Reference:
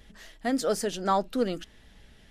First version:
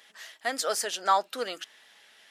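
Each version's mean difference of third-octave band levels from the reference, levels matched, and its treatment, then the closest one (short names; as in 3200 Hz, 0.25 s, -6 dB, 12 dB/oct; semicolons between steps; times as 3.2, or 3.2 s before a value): 7.5 dB: HPF 850 Hz 12 dB/oct; gain +5 dB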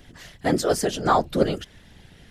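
3.5 dB: whisperiser; gain +5.5 dB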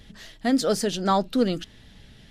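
2.0 dB: graphic EQ 125/250/4000 Hz +9/+3/+6 dB; gain +2 dB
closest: third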